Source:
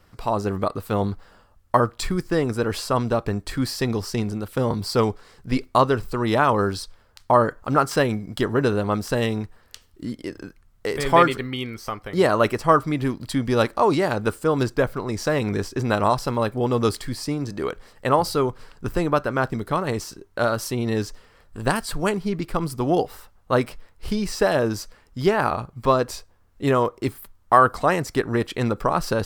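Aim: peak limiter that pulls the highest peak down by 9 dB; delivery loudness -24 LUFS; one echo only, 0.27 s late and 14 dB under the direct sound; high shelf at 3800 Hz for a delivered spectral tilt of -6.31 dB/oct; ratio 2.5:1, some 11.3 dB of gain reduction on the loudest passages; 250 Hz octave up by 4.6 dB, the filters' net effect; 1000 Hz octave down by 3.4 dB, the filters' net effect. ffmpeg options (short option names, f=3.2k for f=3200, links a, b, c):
-af "equalizer=f=250:t=o:g=6,equalizer=f=1k:t=o:g=-4,highshelf=f=3.8k:g=-6.5,acompressor=threshold=-30dB:ratio=2.5,alimiter=limit=-22dB:level=0:latency=1,aecho=1:1:270:0.2,volume=9.5dB"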